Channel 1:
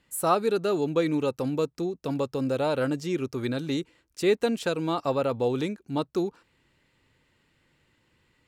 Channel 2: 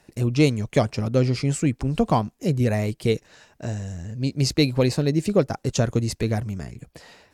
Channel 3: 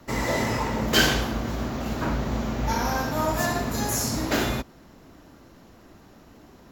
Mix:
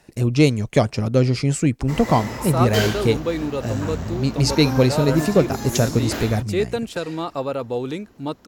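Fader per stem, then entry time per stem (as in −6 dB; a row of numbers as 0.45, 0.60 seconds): +0.5, +3.0, −4.5 decibels; 2.30, 0.00, 1.80 seconds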